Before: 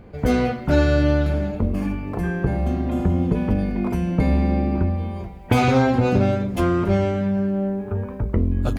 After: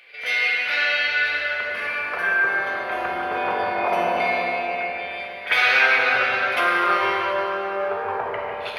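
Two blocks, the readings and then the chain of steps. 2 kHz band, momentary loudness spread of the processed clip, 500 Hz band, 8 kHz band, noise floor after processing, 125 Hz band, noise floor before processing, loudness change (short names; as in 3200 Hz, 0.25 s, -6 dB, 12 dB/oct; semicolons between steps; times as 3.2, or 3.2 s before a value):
+14.0 dB, 10 LU, -2.5 dB, n/a, -33 dBFS, -28.0 dB, -34 dBFS, +0.5 dB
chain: graphic EQ 250/500/1000 Hz -10/+5/-8 dB; in parallel at +2 dB: compressor, threshold -26 dBFS, peak gain reduction 11.5 dB; on the sum: running mean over 6 samples; pre-echo 50 ms -14 dB; LFO high-pass saw down 0.24 Hz 800–2500 Hz; on a send: darkening echo 0.151 s, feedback 76%, low-pass 1800 Hz, level -4.5 dB; on the sum: plate-style reverb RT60 2.8 s, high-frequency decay 0.9×, DRR -1.5 dB; gain +4.5 dB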